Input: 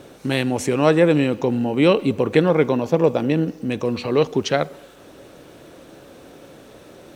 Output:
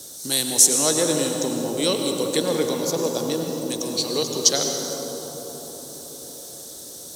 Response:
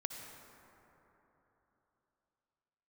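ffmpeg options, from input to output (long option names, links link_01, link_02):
-filter_complex "[0:a]acrossover=split=180|1000[link_01][link_02][link_03];[link_01]acompressor=threshold=-38dB:ratio=6[link_04];[link_04][link_02][link_03]amix=inputs=3:normalize=0,aexciter=amount=14.4:drive=7.8:freq=4000[link_05];[1:a]atrim=start_sample=2205,asetrate=27783,aresample=44100[link_06];[link_05][link_06]afir=irnorm=-1:irlink=0,volume=-8.5dB"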